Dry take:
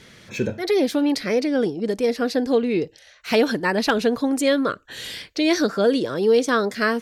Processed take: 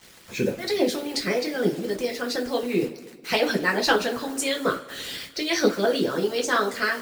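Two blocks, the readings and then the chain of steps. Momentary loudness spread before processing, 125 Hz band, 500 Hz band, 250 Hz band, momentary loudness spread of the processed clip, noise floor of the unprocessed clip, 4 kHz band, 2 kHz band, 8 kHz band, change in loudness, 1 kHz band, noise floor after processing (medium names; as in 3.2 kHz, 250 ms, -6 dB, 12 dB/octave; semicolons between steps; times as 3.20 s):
10 LU, -1.5 dB, -4.5 dB, -6.0 dB, 8 LU, -51 dBFS, +1.0 dB, 0.0 dB, +2.0 dB, -3.5 dB, -1.0 dB, -49 dBFS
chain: bit crusher 7-bit; two-slope reverb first 0.3 s, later 1.9 s, from -18 dB, DRR -1 dB; harmonic-percussive split harmonic -13 dB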